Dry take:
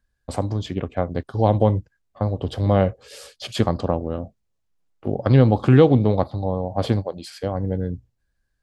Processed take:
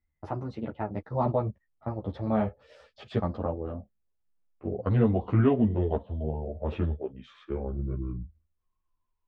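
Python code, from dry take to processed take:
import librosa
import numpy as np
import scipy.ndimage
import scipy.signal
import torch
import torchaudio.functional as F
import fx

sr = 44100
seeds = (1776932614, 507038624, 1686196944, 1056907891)

y = fx.speed_glide(x, sr, from_pct=125, to_pct=61)
y = scipy.signal.sosfilt(scipy.signal.butter(2, 2100.0, 'lowpass', fs=sr, output='sos'), y)
y = fx.ensemble(y, sr)
y = F.gain(torch.from_numpy(y), -5.0).numpy()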